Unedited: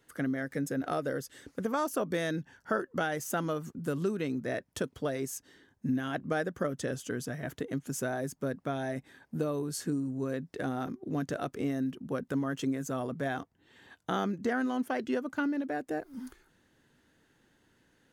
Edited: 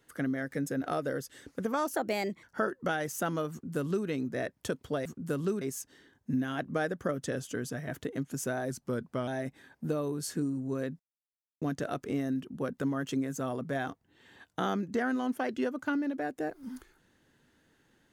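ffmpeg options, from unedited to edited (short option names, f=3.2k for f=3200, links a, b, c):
-filter_complex "[0:a]asplit=9[a][b][c][d][e][f][g][h][i];[a]atrim=end=1.954[j];[b]atrim=start=1.95:end=2.55,asetpts=PTS-STARTPTS,asetrate=54684,aresample=44100[k];[c]atrim=start=2.546:end=5.172[l];[d]atrim=start=3.628:end=4.192[m];[e]atrim=start=5.168:end=8.264[n];[f]atrim=start=8.26:end=8.78,asetpts=PTS-STARTPTS,asetrate=40131,aresample=44100[o];[g]atrim=start=8.776:end=10.5,asetpts=PTS-STARTPTS,afade=t=out:st=1.72:d=0.004:c=hsin[p];[h]atrim=start=10.5:end=11.12,asetpts=PTS-STARTPTS,volume=0[q];[i]atrim=start=11.12,asetpts=PTS-STARTPTS,afade=t=in:d=0.004:c=hsin[r];[j][k]acrossfade=d=0.004:c1=hsin:c2=hsin[s];[s][l]acrossfade=d=0.004:c1=hsin:c2=hsin[t];[t][m]acrossfade=d=0.004:c1=hsin:c2=hsin[u];[u][n]acrossfade=d=0.004:c1=hsin:c2=hsin[v];[v][o]acrossfade=d=0.004:c1=hsin:c2=hsin[w];[p][q][r]concat=n=3:v=0:a=1[x];[w][x]acrossfade=d=0.004:c1=hsin:c2=hsin"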